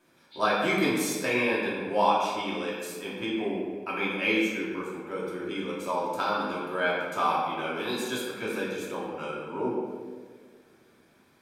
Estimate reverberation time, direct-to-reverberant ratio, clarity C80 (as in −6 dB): 1.7 s, −7.0 dB, 2.0 dB